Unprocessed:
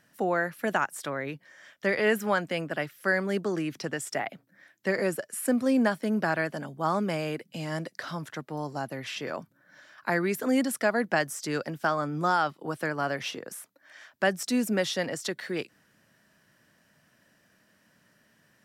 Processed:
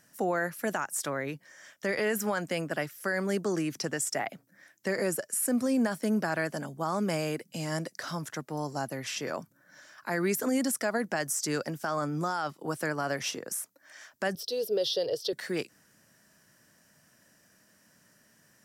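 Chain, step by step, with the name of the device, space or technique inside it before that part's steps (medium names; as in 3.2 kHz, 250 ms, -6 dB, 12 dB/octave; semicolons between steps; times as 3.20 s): over-bright horn tweeter (resonant high shelf 4.7 kHz +6.5 dB, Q 1.5; peak limiter -20 dBFS, peak gain reduction 8.5 dB); 14.35–15.33 s: FFT filter 110 Hz 0 dB, 240 Hz -22 dB, 440 Hz +11 dB, 780 Hz -8 dB, 2.2 kHz -18 dB, 3.2 kHz +6 dB, 4.9 kHz +3 dB, 7.1 kHz -23 dB, 13 kHz -5 dB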